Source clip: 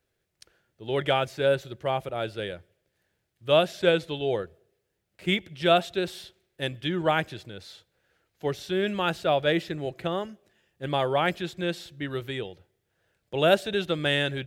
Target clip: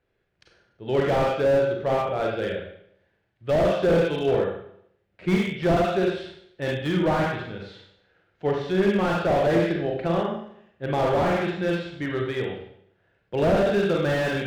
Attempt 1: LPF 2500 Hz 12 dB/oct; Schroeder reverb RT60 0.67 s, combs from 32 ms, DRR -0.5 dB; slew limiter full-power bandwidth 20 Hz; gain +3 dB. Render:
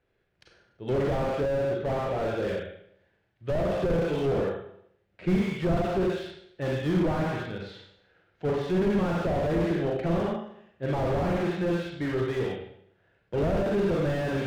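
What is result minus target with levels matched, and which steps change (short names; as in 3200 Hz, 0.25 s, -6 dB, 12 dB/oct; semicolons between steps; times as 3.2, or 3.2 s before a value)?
slew limiter: distortion +7 dB
change: slew limiter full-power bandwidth 51.5 Hz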